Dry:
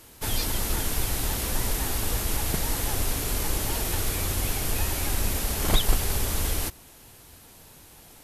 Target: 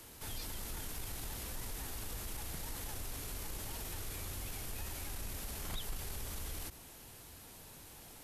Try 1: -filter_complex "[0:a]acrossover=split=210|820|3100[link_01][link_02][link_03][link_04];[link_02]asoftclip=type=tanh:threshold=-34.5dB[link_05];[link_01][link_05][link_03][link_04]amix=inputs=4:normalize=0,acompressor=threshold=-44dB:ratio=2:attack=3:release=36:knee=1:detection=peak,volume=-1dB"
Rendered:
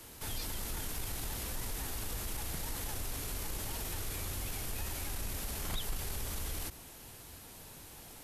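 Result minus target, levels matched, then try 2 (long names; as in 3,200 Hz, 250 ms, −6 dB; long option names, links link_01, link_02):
downward compressor: peak gain reduction −4 dB
-filter_complex "[0:a]acrossover=split=210|820|3100[link_01][link_02][link_03][link_04];[link_02]asoftclip=type=tanh:threshold=-34.5dB[link_05];[link_01][link_05][link_03][link_04]amix=inputs=4:normalize=0,acompressor=threshold=-52dB:ratio=2:attack=3:release=36:knee=1:detection=peak,volume=-1dB"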